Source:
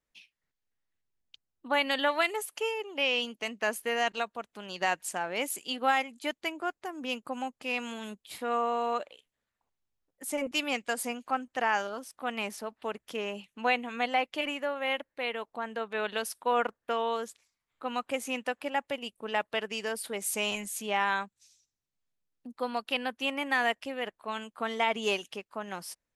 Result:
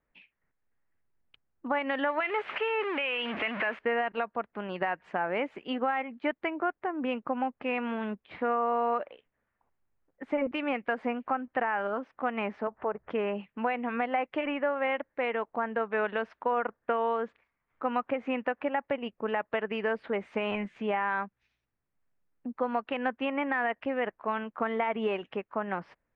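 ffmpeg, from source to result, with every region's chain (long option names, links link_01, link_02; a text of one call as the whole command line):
ffmpeg -i in.wav -filter_complex "[0:a]asettb=1/sr,asplit=3[link_01][link_02][link_03];[link_01]atrim=end=2.204[link_04];[link_02]atrim=start=2.2:end=3.79,asetpts=PTS-STARTPTS,afade=type=in:duration=0.004:curve=qsin,afade=type=out:start_time=1.586:duration=0.004:curve=qsin,aeval=exprs='val(0)+0.5*0.0251*sgn(val(0))':channel_layout=same,highpass=frequency=430:poles=1,equalizer=frequency=2700:width=0.93:gain=9[link_05];[link_03]atrim=start=3.786[link_06];[link_04][link_05]acrossfade=duration=0.004:curve1=hsin:curve2=qsin[link_07];[link_07][link_06]acrossfade=duration=0.004:curve1=qsin:curve2=hsin,asettb=1/sr,asplit=3[link_08][link_09][link_10];[link_08]atrim=end=12.674[link_11];[link_09]atrim=start=12.67:end=13.1,asetpts=PTS-STARTPTS,afade=type=in:duration=0.004:curve=qsin,afade=type=out:start_time=0.426:duration=0.004:curve=qsin,lowpass=1200,equalizer=frequency=260:width=2.9:gain=-12.5,acompressor=mode=upward:threshold=-38dB:ratio=2.5:attack=3.2:release=140:knee=2.83:detection=peak[link_12];[link_10]atrim=start=13.096[link_13];[link_11][link_12]acrossfade=duration=0.004:curve1=hsin:curve2=qsin[link_14];[link_14][link_13]acrossfade=duration=0.004:curve1=qsin:curve2=hsin,alimiter=limit=-21dB:level=0:latency=1:release=123,lowpass=frequency=2100:width=0.5412,lowpass=frequency=2100:width=1.3066,acompressor=threshold=-35dB:ratio=2,volume=7.5dB" out.wav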